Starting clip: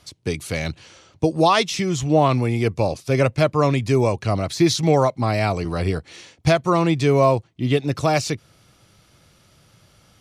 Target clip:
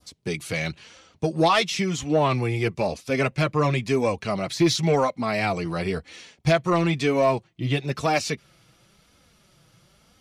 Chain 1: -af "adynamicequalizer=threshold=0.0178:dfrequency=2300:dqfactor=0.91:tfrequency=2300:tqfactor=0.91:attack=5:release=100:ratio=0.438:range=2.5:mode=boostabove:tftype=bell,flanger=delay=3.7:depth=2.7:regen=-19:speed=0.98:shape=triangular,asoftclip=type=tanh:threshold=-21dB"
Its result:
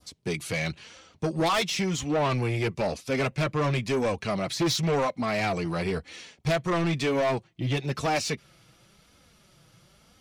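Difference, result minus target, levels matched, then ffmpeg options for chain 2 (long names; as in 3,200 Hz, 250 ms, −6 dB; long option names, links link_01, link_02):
soft clipping: distortion +12 dB
-af "adynamicequalizer=threshold=0.0178:dfrequency=2300:dqfactor=0.91:tfrequency=2300:tqfactor=0.91:attack=5:release=100:ratio=0.438:range=2.5:mode=boostabove:tftype=bell,flanger=delay=3.7:depth=2.7:regen=-19:speed=0.98:shape=triangular,asoftclip=type=tanh:threshold=-10dB"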